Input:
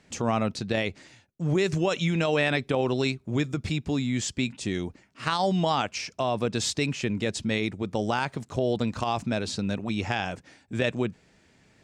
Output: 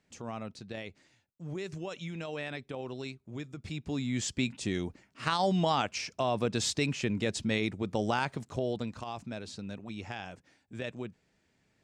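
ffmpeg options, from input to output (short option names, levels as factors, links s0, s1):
-af "volume=0.708,afade=t=in:st=3.55:d=0.78:silence=0.281838,afade=t=out:st=8.24:d=0.79:silence=0.354813"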